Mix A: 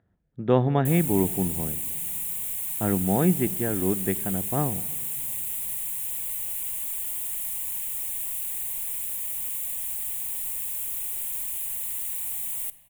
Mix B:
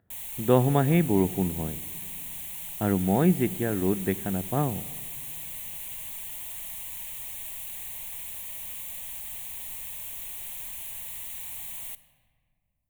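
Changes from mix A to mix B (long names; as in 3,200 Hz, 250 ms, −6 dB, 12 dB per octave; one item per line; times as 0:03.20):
background: entry −0.75 s
master: add high shelf with overshoot 6,700 Hz −6.5 dB, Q 1.5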